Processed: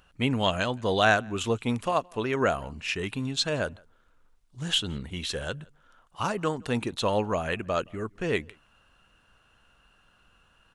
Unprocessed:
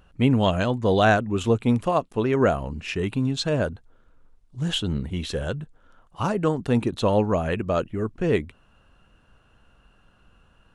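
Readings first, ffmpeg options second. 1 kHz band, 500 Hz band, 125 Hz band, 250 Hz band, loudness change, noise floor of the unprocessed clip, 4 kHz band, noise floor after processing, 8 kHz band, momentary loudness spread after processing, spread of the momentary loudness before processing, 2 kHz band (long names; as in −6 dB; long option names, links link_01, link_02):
−2.5 dB, −5.0 dB, −8.0 dB, −7.5 dB, −4.5 dB, −60 dBFS, +2.0 dB, −64 dBFS, +2.5 dB, 9 LU, 10 LU, +0.5 dB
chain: -filter_complex "[0:a]tiltshelf=frequency=810:gain=-5.5,asplit=2[link_01][link_02];[link_02]adelay=169.1,volume=-28dB,highshelf=frequency=4000:gain=-3.8[link_03];[link_01][link_03]amix=inputs=2:normalize=0,volume=-3dB"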